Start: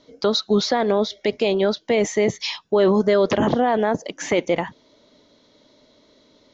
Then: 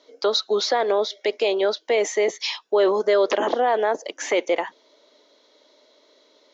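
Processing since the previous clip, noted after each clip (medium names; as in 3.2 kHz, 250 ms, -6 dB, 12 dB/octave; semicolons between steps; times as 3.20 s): high-pass 360 Hz 24 dB/octave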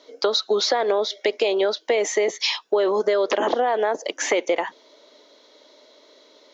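compression, threshold -22 dBFS, peak gain reduction 8 dB; trim +5 dB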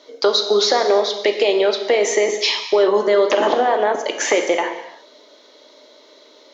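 gated-style reverb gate 380 ms falling, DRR 4.5 dB; trim +3.5 dB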